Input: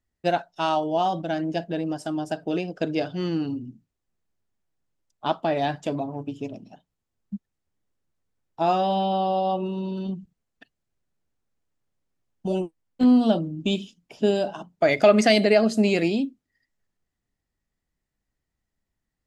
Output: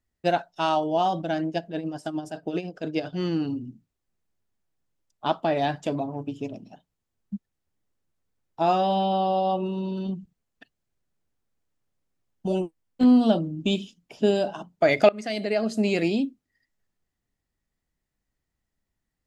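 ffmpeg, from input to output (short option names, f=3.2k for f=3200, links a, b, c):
-filter_complex "[0:a]asettb=1/sr,asplit=3[a][b][c];[a]atrim=end=1.474[d];[b]atrim=start=1.47:end=3.13,asetpts=PTS-STARTPTS,afade=t=in:d=0.004:c=qsin,afade=t=out:st=1.656:d=0.004:c=qsin,tremolo=f=10:d=0.67[e];[c]atrim=start=3.126[f];[d][e]acrossfade=d=0.004:c1=hsin:c2=qsin[g];[g][f]acrossfade=d=0.004:c1=qsin:c2=hsin,asplit=2[h][i];[h]atrim=end=15.09,asetpts=PTS-STARTPTS,afade=t=out:st=15.086:d=0.004:c=hsin:silence=0.0630957[j];[i]atrim=start=15.09,asetpts=PTS-STARTPTS,afade=t=in:d=1.12:silence=0.0630957[k];[j][k]concat=n=2:v=0:a=1"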